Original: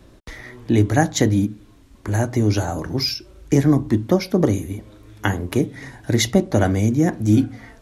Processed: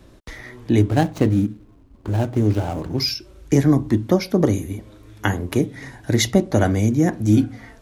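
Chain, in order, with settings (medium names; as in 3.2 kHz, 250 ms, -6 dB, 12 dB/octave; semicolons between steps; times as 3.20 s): 0.81–3.00 s: median filter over 25 samples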